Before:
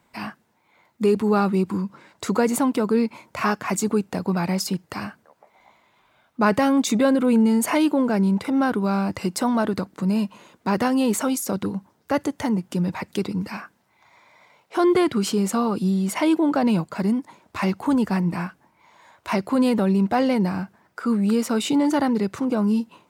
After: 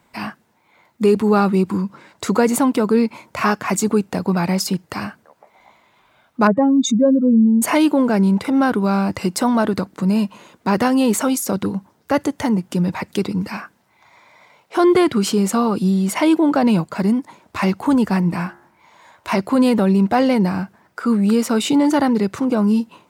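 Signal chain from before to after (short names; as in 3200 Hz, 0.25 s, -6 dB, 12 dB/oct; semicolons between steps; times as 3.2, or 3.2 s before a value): 6.47–7.62 spectral contrast raised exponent 2.3; 18.37–19.4 de-hum 69.94 Hz, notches 30; gain +4.5 dB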